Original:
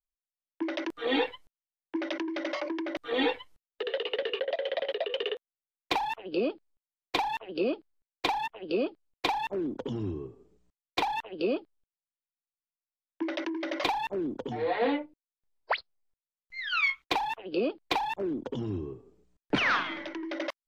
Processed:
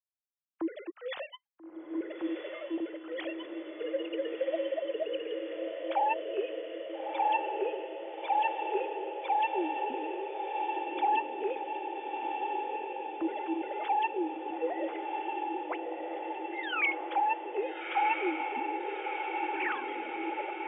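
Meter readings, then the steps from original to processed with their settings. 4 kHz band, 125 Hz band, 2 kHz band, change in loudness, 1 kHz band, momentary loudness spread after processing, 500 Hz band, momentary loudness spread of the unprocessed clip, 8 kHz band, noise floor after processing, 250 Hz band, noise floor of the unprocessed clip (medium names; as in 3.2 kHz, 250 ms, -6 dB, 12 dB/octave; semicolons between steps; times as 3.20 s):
-10.0 dB, under -30 dB, -3.5 dB, -2.0 dB, +3.5 dB, 9 LU, -1.5 dB, 9 LU, under -25 dB, -52 dBFS, -3.5 dB, under -85 dBFS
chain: formants replaced by sine waves; on a send: echo that smears into a reverb 1335 ms, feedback 73%, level -4 dB; on the sum: trim -3 dB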